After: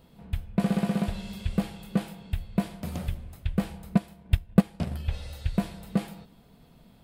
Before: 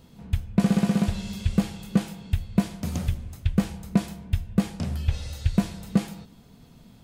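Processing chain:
0:03.95–0:05.05: transient designer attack +8 dB, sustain −8 dB
graphic EQ with 15 bands 100 Hz −6 dB, 250 Hz −3 dB, 630 Hz +3 dB, 6,300 Hz −9 dB
level −2.5 dB

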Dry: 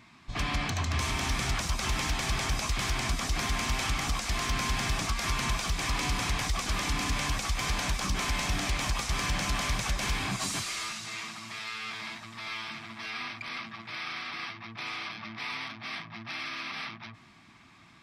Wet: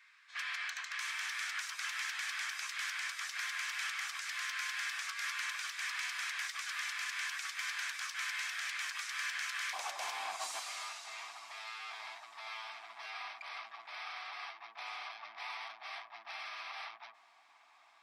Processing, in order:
four-pole ladder high-pass 1,400 Hz, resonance 55%, from 0:09.72 650 Hz
level +1 dB

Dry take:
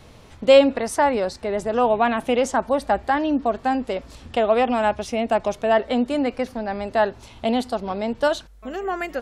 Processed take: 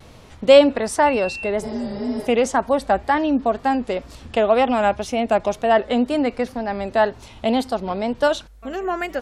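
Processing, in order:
0:01.66–0:02.25: healed spectral selection 390–5,300 Hz before
pitch vibrato 2 Hz 68 cents
0:01.05–0:01.49: steady tone 2,700 Hz −31 dBFS
level +2 dB

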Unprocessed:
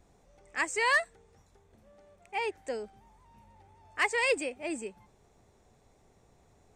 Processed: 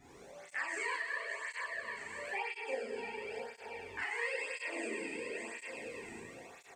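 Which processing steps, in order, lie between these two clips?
feedback delay that plays each chunk backwards 339 ms, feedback 47%, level −12 dB
parametric band 2,000 Hz +6.5 dB 0.91 octaves
dense smooth reverb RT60 1.3 s, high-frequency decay 1×, DRR −7.5 dB
downward compressor 5 to 1, threshold −42 dBFS, peak gain reduction 29 dB
0:04.11–0:04.68: high-pass filter 380 Hz 24 dB per octave
double-tracking delay 36 ms −2 dB
through-zero flanger with one copy inverted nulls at 0.98 Hz, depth 1.9 ms
level +3.5 dB

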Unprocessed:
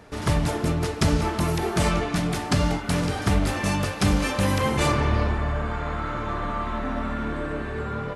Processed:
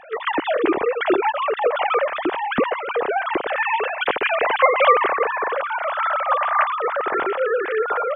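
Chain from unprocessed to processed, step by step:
three sine waves on the formant tracks
0:01.49–0:04.00: high-frequency loss of the air 220 metres
level +3.5 dB

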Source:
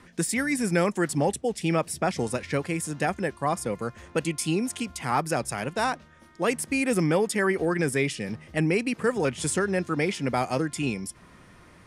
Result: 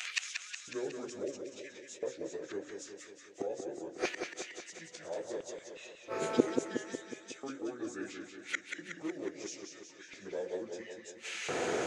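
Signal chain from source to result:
phase-vocoder pitch shift without resampling −6 semitones
octave-band graphic EQ 250/500/1,000/2,000/4,000/8,000 Hz −10/+11/−11/+4/−4/+3 dB
in parallel at −2.5 dB: downward compressor, threshold −38 dBFS, peak gain reduction 18 dB
on the sum: mains-hum notches 60/120/180/240/300/360/420/480/540 Hz
gate with flip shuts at −30 dBFS, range −34 dB
auto-filter high-pass square 0.74 Hz 300–2,600 Hz
feedback echo with a swinging delay time 183 ms, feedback 60%, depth 78 cents, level −6 dB
level +17 dB

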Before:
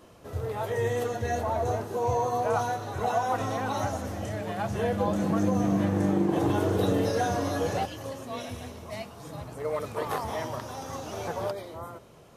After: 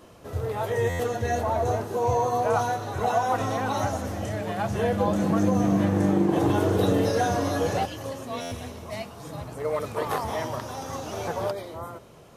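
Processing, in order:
buffer that repeats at 0:00.89/0:08.41, samples 512, times 8
level +3 dB

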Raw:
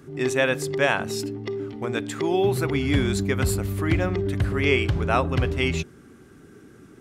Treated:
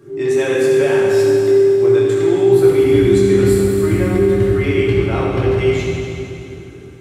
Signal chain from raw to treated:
parametric band 400 Hz +9.5 dB 0.71 octaves
brickwall limiter −11.5 dBFS, peak gain reduction 8 dB
convolution reverb RT60 2.8 s, pre-delay 4 ms, DRR −7 dB
level −4 dB

